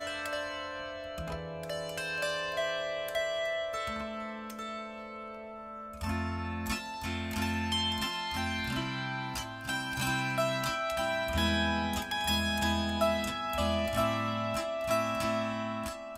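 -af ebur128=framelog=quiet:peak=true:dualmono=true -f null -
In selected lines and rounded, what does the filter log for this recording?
Integrated loudness:
  I:         -29.6 LUFS
  Threshold: -39.7 LUFS
Loudness range:
  LRA:         6.8 LU
  Threshold: -49.6 LUFS
  LRA low:   -33.8 LUFS
  LRA high:  -27.0 LUFS
True peak:
  Peak:      -16.3 dBFS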